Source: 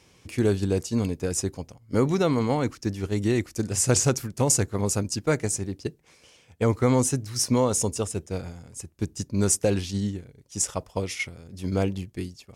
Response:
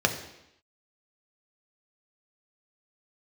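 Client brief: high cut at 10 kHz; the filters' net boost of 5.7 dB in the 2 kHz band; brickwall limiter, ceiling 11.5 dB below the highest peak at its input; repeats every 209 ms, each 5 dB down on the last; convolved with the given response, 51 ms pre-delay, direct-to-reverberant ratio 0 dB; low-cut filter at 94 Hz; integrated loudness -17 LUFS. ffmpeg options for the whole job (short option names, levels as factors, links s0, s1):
-filter_complex "[0:a]highpass=94,lowpass=10000,equalizer=f=2000:t=o:g=7,alimiter=limit=0.141:level=0:latency=1,aecho=1:1:209|418|627|836|1045|1254|1463:0.562|0.315|0.176|0.0988|0.0553|0.031|0.0173,asplit=2[s0][s1];[1:a]atrim=start_sample=2205,adelay=51[s2];[s1][s2]afir=irnorm=-1:irlink=0,volume=0.224[s3];[s0][s3]amix=inputs=2:normalize=0,volume=2.24"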